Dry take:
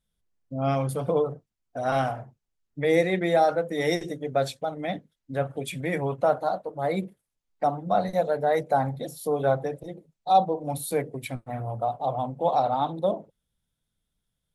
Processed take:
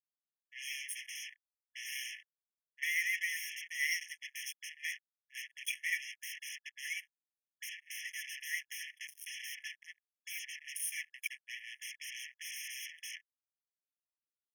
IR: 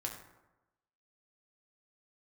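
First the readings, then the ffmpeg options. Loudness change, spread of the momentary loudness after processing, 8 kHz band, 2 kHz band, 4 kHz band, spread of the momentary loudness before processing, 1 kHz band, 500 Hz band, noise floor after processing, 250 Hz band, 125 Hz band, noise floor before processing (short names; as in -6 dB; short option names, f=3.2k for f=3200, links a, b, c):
-13.0 dB, 13 LU, +2.0 dB, -0.5 dB, -2.0 dB, 12 LU, under -40 dB, under -40 dB, under -85 dBFS, under -40 dB, under -40 dB, -82 dBFS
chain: -filter_complex "[0:a]asplit=2[a][b];[b]asoftclip=type=tanh:threshold=-20dB,volume=-7.5dB[c];[a][c]amix=inputs=2:normalize=0,acrusher=bits=4:mix=0:aa=0.5,afftfilt=real='re*eq(mod(floor(b*sr/1024/1700),2),1)':imag='im*eq(mod(floor(b*sr/1024/1700),2),1)':win_size=1024:overlap=0.75,volume=-2.5dB"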